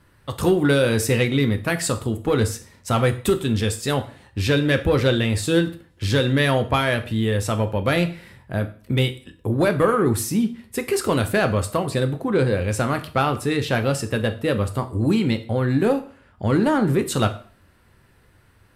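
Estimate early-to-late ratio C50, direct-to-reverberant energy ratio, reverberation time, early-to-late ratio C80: 14.5 dB, 7.0 dB, 0.45 s, 18.5 dB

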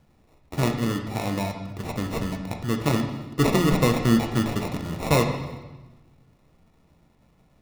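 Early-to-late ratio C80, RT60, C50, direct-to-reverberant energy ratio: 8.5 dB, 1.2 s, 6.5 dB, 3.0 dB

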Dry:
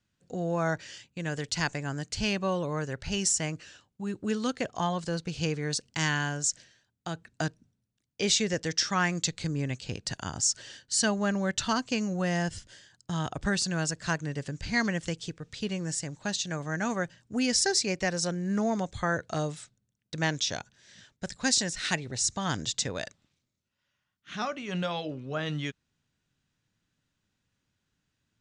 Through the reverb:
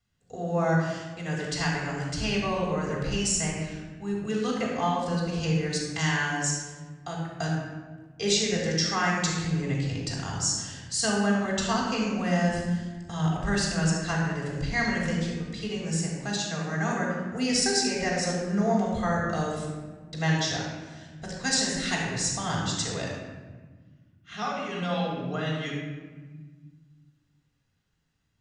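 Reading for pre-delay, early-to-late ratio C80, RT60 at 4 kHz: 3 ms, 2.5 dB, 0.85 s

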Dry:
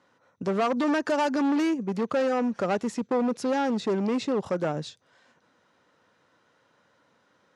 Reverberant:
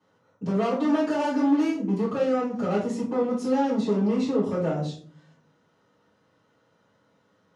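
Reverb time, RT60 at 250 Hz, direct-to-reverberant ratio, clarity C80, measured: 0.50 s, 0.85 s, -12.5 dB, 10.5 dB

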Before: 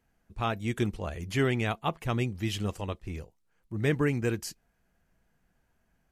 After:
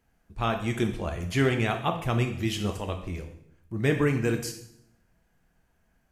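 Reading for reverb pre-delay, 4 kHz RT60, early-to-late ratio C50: 11 ms, 0.65 s, 8.5 dB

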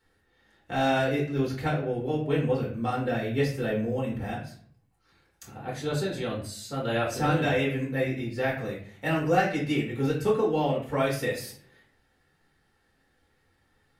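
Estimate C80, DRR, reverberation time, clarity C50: 10.0 dB, -5.0 dB, 0.50 s, 6.0 dB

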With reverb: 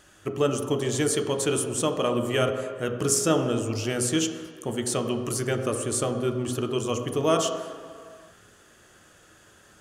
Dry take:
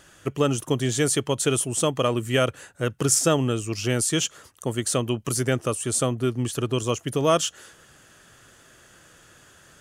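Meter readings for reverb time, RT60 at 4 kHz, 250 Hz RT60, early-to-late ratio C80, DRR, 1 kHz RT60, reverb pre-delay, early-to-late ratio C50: 2.1 s, 1.5 s, 2.0 s, 8.5 dB, 4.0 dB, 2.1 s, 3 ms, 7.0 dB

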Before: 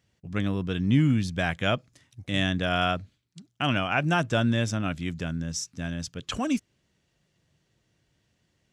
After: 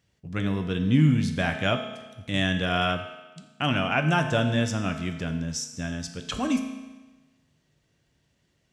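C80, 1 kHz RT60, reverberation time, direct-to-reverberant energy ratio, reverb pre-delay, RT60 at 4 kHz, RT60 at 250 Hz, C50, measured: 9.5 dB, 1.2 s, 1.2 s, 5.0 dB, 5 ms, 1.1 s, 1.2 s, 7.5 dB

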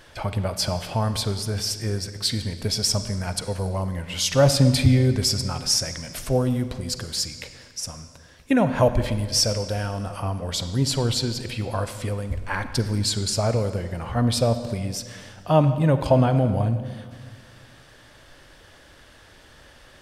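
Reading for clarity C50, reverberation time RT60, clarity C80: 10.5 dB, 1.7 s, 12.0 dB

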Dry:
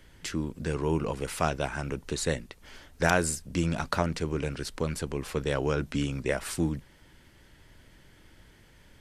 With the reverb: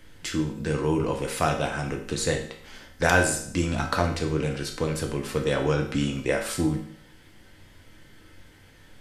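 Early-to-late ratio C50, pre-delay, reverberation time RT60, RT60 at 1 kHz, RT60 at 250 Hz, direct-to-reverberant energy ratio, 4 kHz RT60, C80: 7.5 dB, 4 ms, 0.60 s, 0.60 s, 0.60 s, 2.0 dB, 0.60 s, 10.5 dB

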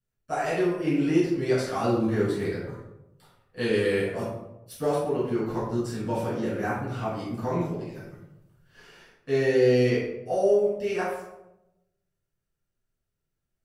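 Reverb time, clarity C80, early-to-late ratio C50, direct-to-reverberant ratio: 0.95 s, 4.5 dB, 0.5 dB, -10.0 dB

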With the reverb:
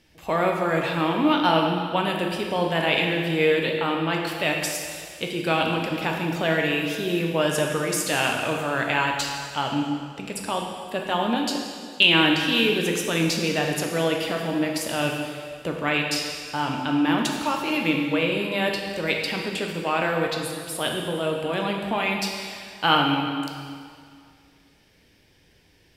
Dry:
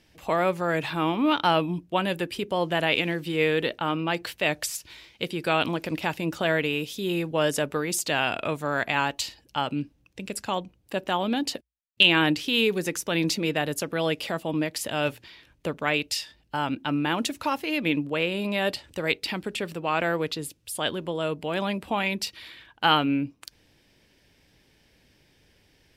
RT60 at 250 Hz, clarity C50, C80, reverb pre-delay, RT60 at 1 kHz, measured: 2.1 s, 2.5 dB, 4.0 dB, 5 ms, 2.1 s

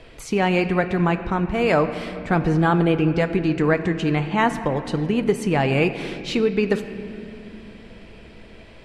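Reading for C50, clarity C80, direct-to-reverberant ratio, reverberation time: 10.5 dB, 11.0 dB, 9.0 dB, 2.8 s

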